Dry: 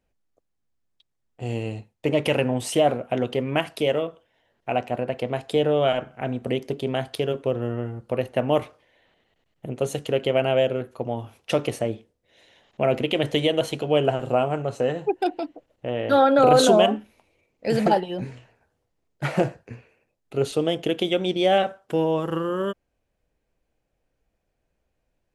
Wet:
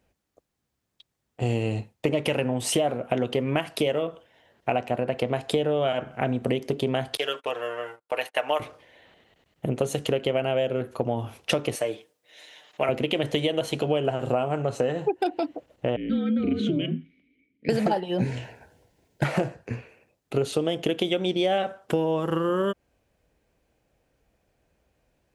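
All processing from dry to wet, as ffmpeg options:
ffmpeg -i in.wav -filter_complex "[0:a]asettb=1/sr,asplit=3[link_01][link_02][link_03];[link_01]atrim=end=7.174[link_04];[link_02]atrim=start=7.17:end=8.6,asetpts=PTS-STARTPTS,afade=type=in:duration=0.004:curve=qsin,afade=type=out:start_time=1.426:duration=0.004:curve=qsin,highpass=930,aecho=1:1:6.6:0.7,atrim=end_sample=63063,agate=range=-34dB:threshold=-50dB:ratio=16:release=100:detection=peak[link_05];[link_03]atrim=start=8.596[link_06];[link_04][link_05]acrossfade=duration=0.004:curve1=hsin:curve2=qsin[link_07];[link_07][link_06]acrossfade=duration=0.004:curve1=qsin:curve2=hsin,asettb=1/sr,asplit=3[link_08][link_09][link_10];[link_08]atrim=end=11.754[link_11];[link_09]atrim=start=11.75:end=12.89,asetpts=PTS-STARTPTS,afade=type=in:duration=0.004:curve=qsin,afade=type=out:start_time=1.136:duration=0.004:curve=qsin,highpass=frequency=920:poles=1,highshelf=frequency=8300:gain=4.5,aecho=1:1:6.6:0.51,atrim=end_sample=50274[link_12];[link_10]atrim=start=12.886[link_13];[link_11][link_12]acrossfade=duration=0.004:curve1=hsin:curve2=qsin[link_14];[link_14][link_13]acrossfade=duration=0.004:curve1=qsin:curve2=hsin,asettb=1/sr,asplit=3[link_15][link_16][link_17];[link_15]atrim=end=15.964[link_18];[link_16]atrim=start=15.96:end=17.69,asetpts=PTS-STARTPTS,afade=type=in:duration=0.004:curve=qsin,afade=type=out:start_time=1.726:duration=0.004:curve=qsin,bass=frequency=250:gain=14,treble=frequency=4000:gain=-6,afreqshift=-51,asplit=3[link_19][link_20][link_21];[link_19]bandpass=frequency=270:width_type=q:width=8,volume=0dB[link_22];[link_20]bandpass=frequency=2290:width_type=q:width=8,volume=-6dB[link_23];[link_21]bandpass=frequency=3010:width_type=q:width=8,volume=-9dB[link_24];[link_22][link_23][link_24]amix=inputs=3:normalize=0[link_25];[link_17]atrim=start=17.686[link_26];[link_18][link_25]acrossfade=duration=0.004:curve1=hsin:curve2=qsin[link_27];[link_27][link_26]acrossfade=duration=0.004:curve1=qsin:curve2=hsin,asettb=1/sr,asplit=3[link_28][link_29][link_30];[link_28]atrim=end=18.204[link_31];[link_29]atrim=start=18.2:end=19.24,asetpts=PTS-STARTPTS,afade=type=in:duration=0.004:curve=qsin,afade=type=out:start_time=1.036:duration=0.004:curve=qsin,acontrast=83,asuperstop=centerf=1200:order=4:qfactor=4.4[link_32];[link_30]atrim=start=19.236[link_33];[link_31][link_32]acrossfade=duration=0.004:curve1=hsin:curve2=qsin[link_34];[link_34][link_33]acrossfade=duration=0.004:curve1=qsin:curve2=hsin,highpass=45,acompressor=threshold=-29dB:ratio=6,volume=7.5dB" out.wav

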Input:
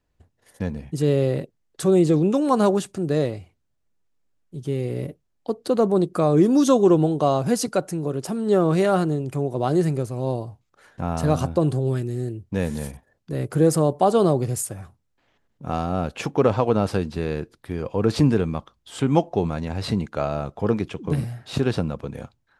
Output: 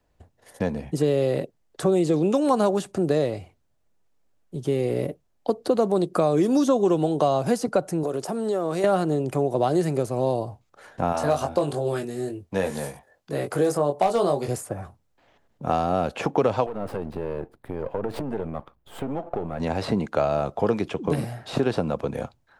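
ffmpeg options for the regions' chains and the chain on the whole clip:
ffmpeg -i in.wav -filter_complex "[0:a]asettb=1/sr,asplit=3[link_01][link_02][link_03];[link_01]atrim=end=8.034[link_04];[link_02]atrim=start=8.03:end=8.84,asetpts=PTS-STARTPTS,afade=type=in:duration=0.004:curve=qsin,afade=type=out:start_time=0.806:duration=0.004:curve=qsin,bass=frequency=250:gain=-8,treble=frequency=4000:gain=7,acompressor=threshold=-28dB:ratio=5:attack=3.2:release=140:knee=1:detection=peak[link_05];[link_03]atrim=start=8.836[link_06];[link_04][link_05]acrossfade=duration=0.004:curve1=hsin:curve2=qsin[link_07];[link_07][link_06]acrossfade=duration=0.004:curve1=qsin:curve2=hsin,asettb=1/sr,asplit=3[link_08][link_09][link_10];[link_08]atrim=end=11.124[link_11];[link_09]atrim=start=11.12:end=14.48,asetpts=PTS-STARTPTS,afade=type=in:duration=0.004:curve=qsin,afade=type=out:start_time=3.356:duration=0.004:curve=qsin,lowshelf=frequency=360:gain=-11.5,aeval=exprs='0.237*(abs(mod(val(0)/0.237+3,4)-2)-1)':channel_layout=same,asplit=2[link_12][link_13];[link_13]adelay=21,volume=-5dB[link_14];[link_12][link_14]amix=inputs=2:normalize=0,atrim=end_sample=148176[link_15];[link_10]atrim=start=14.476[link_16];[link_11][link_15]acrossfade=duration=0.004:curve1=hsin:curve2=qsin[link_17];[link_17][link_16]acrossfade=duration=0.004:curve1=qsin:curve2=hsin,asettb=1/sr,asplit=3[link_18][link_19][link_20];[link_18]atrim=end=16.664[link_21];[link_19]atrim=start=16.66:end=19.6,asetpts=PTS-STARTPTS,afade=type=in:duration=0.004:curve=qsin,afade=type=out:start_time=2.936:duration=0.004:curve=qsin,aeval=exprs='if(lt(val(0),0),0.251*val(0),val(0))':channel_layout=same,equalizer=frequency=5800:width_type=o:width=1.8:gain=-15,acompressor=threshold=-28dB:ratio=10:attack=3.2:release=140:knee=1:detection=peak[link_22];[link_20]atrim=start=19.596[link_23];[link_21][link_22]acrossfade=duration=0.004:curve1=hsin:curve2=qsin[link_24];[link_24][link_23]acrossfade=duration=0.004:curve1=qsin:curve2=hsin,equalizer=frequency=670:width_type=o:width=1.2:gain=6,acrossover=split=180|2000[link_25][link_26][link_27];[link_25]acompressor=threshold=-39dB:ratio=4[link_28];[link_26]acompressor=threshold=-23dB:ratio=4[link_29];[link_27]acompressor=threshold=-42dB:ratio=4[link_30];[link_28][link_29][link_30]amix=inputs=3:normalize=0,volume=3.5dB" out.wav

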